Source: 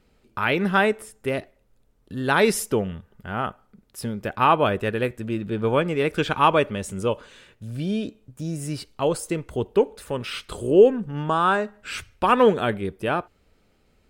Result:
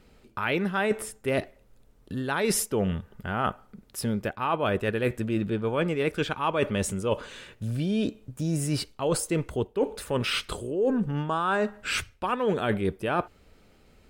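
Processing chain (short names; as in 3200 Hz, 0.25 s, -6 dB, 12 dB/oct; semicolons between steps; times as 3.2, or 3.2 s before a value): spectral gain 10.75–10.97, 1800–3600 Hz -10 dB; reverse; compressor 20:1, threshold -27 dBFS, peak gain reduction 19.5 dB; reverse; gain +5 dB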